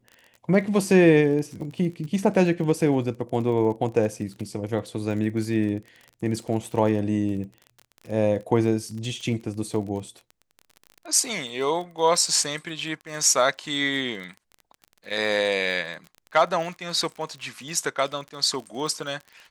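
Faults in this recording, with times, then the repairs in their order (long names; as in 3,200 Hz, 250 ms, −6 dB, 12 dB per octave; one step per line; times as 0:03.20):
surface crackle 28 per second −33 dBFS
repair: click removal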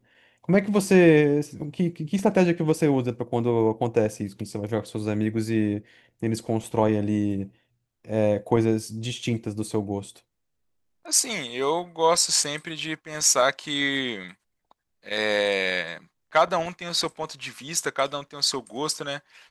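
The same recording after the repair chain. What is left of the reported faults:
none of them is left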